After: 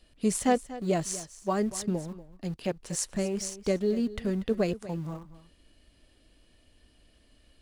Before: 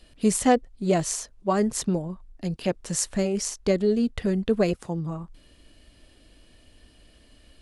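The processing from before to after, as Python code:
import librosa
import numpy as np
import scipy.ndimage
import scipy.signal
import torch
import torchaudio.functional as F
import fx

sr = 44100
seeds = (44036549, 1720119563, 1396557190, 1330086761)

p1 = np.where(np.abs(x) >= 10.0 ** (-30.0 / 20.0), x, 0.0)
p2 = x + F.gain(torch.from_numpy(p1), -11.5).numpy()
p3 = p2 + 10.0 ** (-16.0 / 20.0) * np.pad(p2, (int(239 * sr / 1000.0), 0))[:len(p2)]
y = F.gain(torch.from_numpy(p3), -7.0).numpy()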